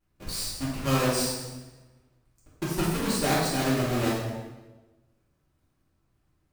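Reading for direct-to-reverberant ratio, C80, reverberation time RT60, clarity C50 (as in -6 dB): -8.5 dB, 3.0 dB, 1.2 s, 0.0 dB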